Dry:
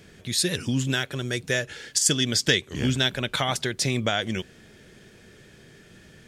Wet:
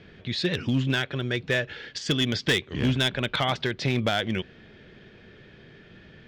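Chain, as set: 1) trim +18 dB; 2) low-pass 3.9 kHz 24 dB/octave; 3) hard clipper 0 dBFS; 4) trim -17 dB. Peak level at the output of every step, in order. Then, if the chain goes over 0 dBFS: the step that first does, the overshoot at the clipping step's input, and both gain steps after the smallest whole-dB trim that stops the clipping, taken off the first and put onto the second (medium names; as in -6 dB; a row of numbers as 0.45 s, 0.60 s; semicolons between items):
+11.5 dBFS, +10.0 dBFS, 0.0 dBFS, -17.0 dBFS; step 1, 10.0 dB; step 1 +8 dB, step 4 -7 dB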